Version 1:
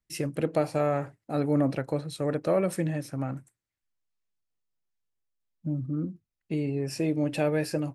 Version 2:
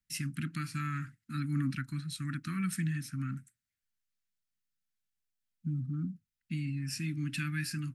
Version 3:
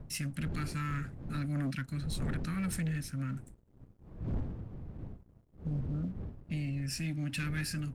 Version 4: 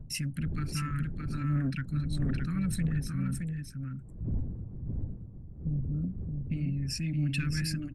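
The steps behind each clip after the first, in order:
elliptic band-stop 240–1400 Hz, stop band 50 dB; low shelf 79 Hz -5.5 dB
wind noise 140 Hz -41 dBFS; sample leveller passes 2; gain -6.5 dB
formant sharpening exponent 1.5; echo 0.619 s -4.5 dB; gain +3 dB

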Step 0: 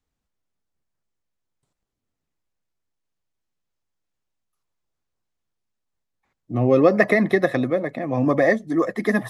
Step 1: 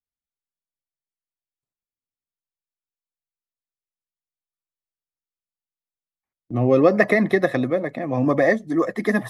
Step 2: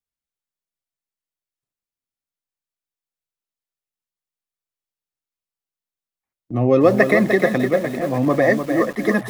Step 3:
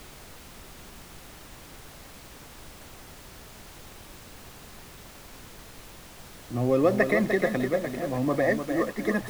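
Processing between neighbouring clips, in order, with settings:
gate with hold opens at -37 dBFS
lo-fi delay 0.3 s, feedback 35%, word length 6-bit, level -7 dB; gain +1.5 dB
added noise pink -38 dBFS; gain -8 dB

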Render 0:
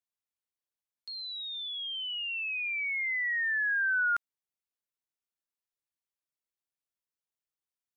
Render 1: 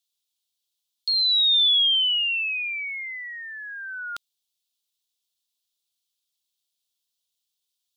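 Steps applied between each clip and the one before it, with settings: resonant high shelf 2500 Hz +12 dB, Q 3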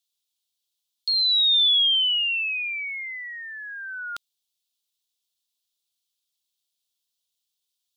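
nothing audible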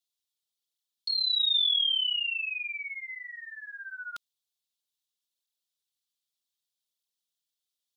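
tape flanging out of phase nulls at 0.64 Hz, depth 7.7 ms; gain -3.5 dB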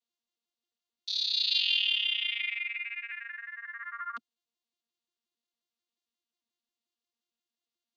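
arpeggiated vocoder bare fifth, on A#3, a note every 89 ms; gain -1 dB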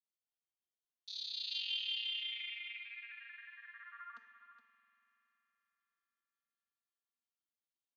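resonator 450 Hz, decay 0.61 s, mix 80%; echo 0.418 s -11 dB; reverb RT60 3.9 s, pre-delay 47 ms, DRR 11 dB

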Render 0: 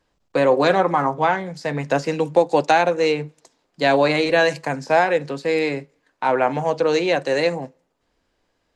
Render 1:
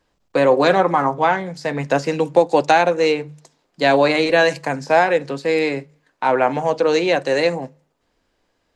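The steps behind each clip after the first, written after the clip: notches 50/100/150 Hz; gain +2 dB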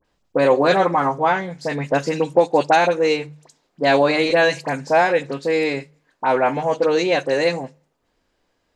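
dispersion highs, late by 49 ms, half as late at 1900 Hz; gain -1 dB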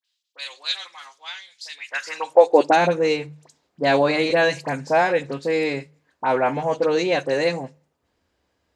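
high-pass sweep 3600 Hz -> 68 Hz, 1.73–3.19; gain -2.5 dB

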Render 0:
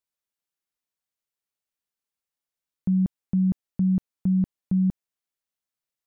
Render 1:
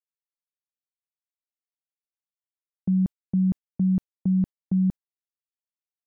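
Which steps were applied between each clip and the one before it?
gate -29 dBFS, range -26 dB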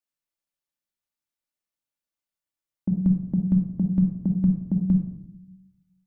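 reverb RT60 0.75 s, pre-delay 3 ms, DRR 1.5 dB; gain +2 dB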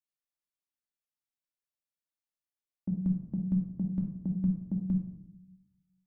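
flange 0.41 Hz, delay 8.5 ms, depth 7.4 ms, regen -60%; gain -4.5 dB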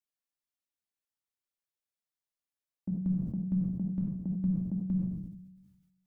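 sustainer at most 47 dB/s; gain -2 dB

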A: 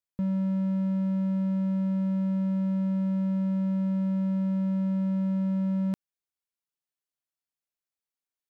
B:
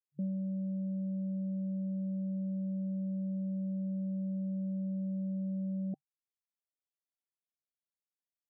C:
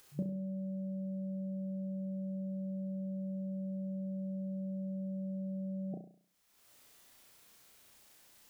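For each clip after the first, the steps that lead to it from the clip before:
FFT band-pass 140–780 Hz; reverb removal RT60 0.61 s; gain -6.5 dB
dynamic EQ 220 Hz, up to -8 dB, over -52 dBFS, Q 1.6; upward compressor, threshold -50 dBFS; flutter echo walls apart 5.8 m, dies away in 0.5 s; gain +7 dB

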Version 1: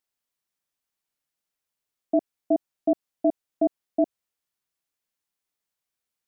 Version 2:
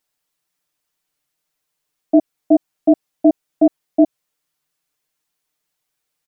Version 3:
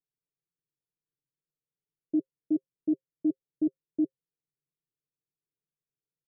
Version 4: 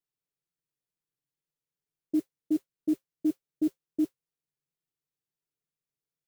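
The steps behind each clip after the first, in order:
comb 6.6 ms, depth 88%; gain +6.5 dB
rippled Chebyshev low-pass 550 Hz, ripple 9 dB; gain -5 dB
modulation noise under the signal 28 dB

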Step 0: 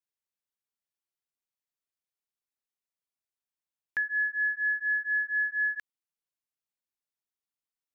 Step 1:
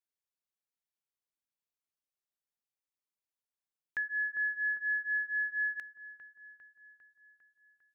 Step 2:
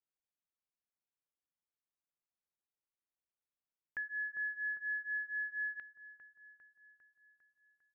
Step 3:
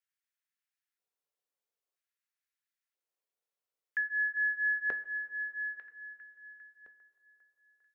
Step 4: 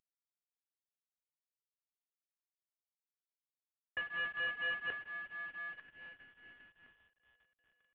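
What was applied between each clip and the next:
dark delay 0.401 s, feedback 59%, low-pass 1300 Hz, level -7 dB; gain -5 dB
air absorption 460 m; gain -2 dB
LFO high-pass square 0.51 Hz 450–1700 Hz; two-slope reverb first 0.23 s, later 3.5 s, from -19 dB, DRR 7 dB
CVSD 16 kbps; gain -7.5 dB

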